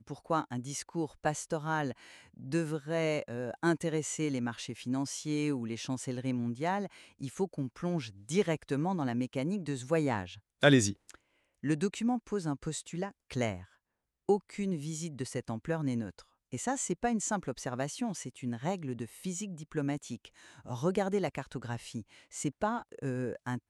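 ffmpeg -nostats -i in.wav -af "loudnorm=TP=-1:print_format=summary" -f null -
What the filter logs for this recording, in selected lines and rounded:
Input Integrated:    -34.2 LUFS
Input True Peak:      -7.9 dBTP
Input LRA:             5.2 LU
Input Threshold:     -44.5 LUFS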